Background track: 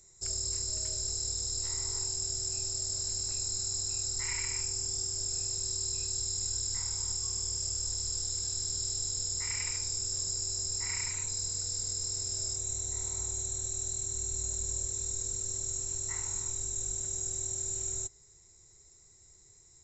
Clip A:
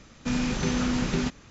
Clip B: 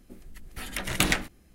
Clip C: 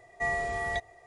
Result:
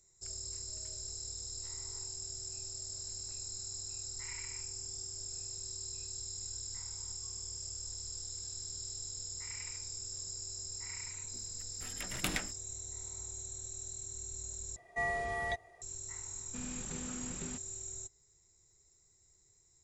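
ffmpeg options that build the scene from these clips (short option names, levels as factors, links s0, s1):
-filter_complex "[0:a]volume=0.355,asplit=2[s0][s1];[s0]atrim=end=14.764[s2];[3:a]atrim=end=1.06,asetpts=PTS-STARTPTS,volume=0.596[s3];[s1]atrim=start=15.816[s4];[2:a]atrim=end=1.54,asetpts=PTS-STARTPTS,volume=0.266,afade=t=in:d=0.004:c=hsin,afade=t=out:st=1.536:d=0.004:c=hsin,adelay=11240[s5];[1:a]atrim=end=1.5,asetpts=PTS-STARTPTS,volume=0.126,afade=t=in:d=0.004:c=hsin,afade=t=out:st=1.496:d=0.004:c=hsin,adelay=16280[s6];[s2][s3]acrossfade=d=0.004:c1=hsin:c2=hsin[s7];[s7][s4]acrossfade=d=0.004:c1=hsin:c2=hsin[s8];[s8][s5][s6]amix=inputs=3:normalize=0"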